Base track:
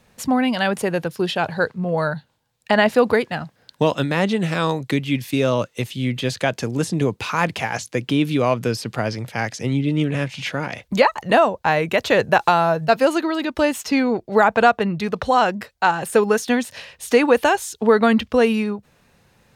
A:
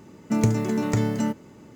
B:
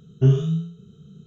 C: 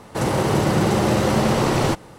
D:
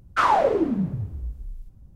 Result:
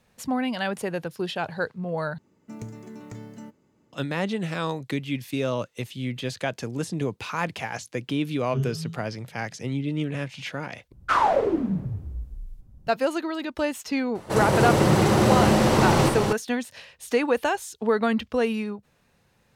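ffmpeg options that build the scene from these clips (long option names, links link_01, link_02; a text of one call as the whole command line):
ffmpeg -i bed.wav -i cue0.wav -i cue1.wav -i cue2.wav -i cue3.wav -filter_complex "[0:a]volume=-7.5dB[link_01];[3:a]aecho=1:1:58.31|242:0.282|0.631[link_02];[link_01]asplit=3[link_03][link_04][link_05];[link_03]atrim=end=2.184[link_06];[1:a]atrim=end=1.75,asetpts=PTS-STARTPTS,volume=-17dB[link_07];[link_04]atrim=start=3.926:end=10.924[link_08];[4:a]atrim=end=1.95,asetpts=PTS-STARTPTS,volume=-1.5dB[link_09];[link_05]atrim=start=12.866[link_10];[2:a]atrim=end=1.26,asetpts=PTS-STARTPTS,volume=-11dB,afade=type=in:duration=0.004:curve=hsin,afade=type=out:start_time=1.256:duration=0.004:curve=hsin,adelay=8320[link_11];[link_02]atrim=end=2.18,asetpts=PTS-STARTPTS,volume=-2dB,afade=type=in:duration=0.004:curve=hsin,afade=type=out:start_time=2.176:duration=0.004:curve=hsin,adelay=14150[link_12];[link_06][link_07]acrossfade=duration=0.004:curve1=hsin:curve2=hsin[link_13];[link_13][link_08]acrossfade=duration=0.004:curve1=hsin:curve2=hsin[link_14];[link_14][link_09]acrossfade=duration=0.004:curve1=hsin:curve2=hsin[link_15];[link_15][link_10]acrossfade=duration=0.004:curve1=hsin:curve2=hsin[link_16];[link_16][link_11][link_12]amix=inputs=3:normalize=0" out.wav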